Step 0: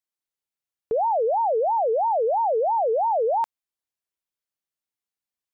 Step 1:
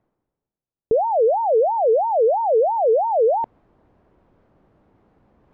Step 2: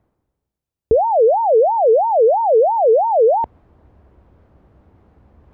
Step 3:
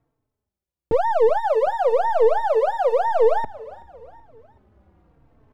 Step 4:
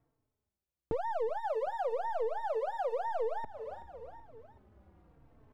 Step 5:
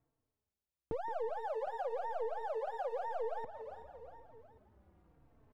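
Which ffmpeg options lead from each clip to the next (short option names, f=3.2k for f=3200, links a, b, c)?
-af "lowpass=1.1k,tiltshelf=f=830:g=8.5,areverse,acompressor=mode=upward:threshold=-32dB:ratio=2.5,areverse,volume=2.5dB"
-af "equalizer=f=69:t=o:w=0.99:g=14,volume=4dB"
-filter_complex "[0:a]aeval=exprs='if(lt(val(0),0),0.447*val(0),val(0))':c=same,aecho=1:1:377|754|1131:0.112|0.0494|0.0217,asplit=2[a][b];[b]adelay=3.9,afreqshift=-0.96[c];[a][c]amix=inputs=2:normalize=1"
-af "acompressor=threshold=-30dB:ratio=3,volume=-4.5dB"
-filter_complex "[0:a]asplit=2[a][b];[b]adelay=170,highpass=300,lowpass=3.4k,asoftclip=type=hard:threshold=-29dB,volume=-9dB[c];[a][c]amix=inputs=2:normalize=0,volume=-5dB"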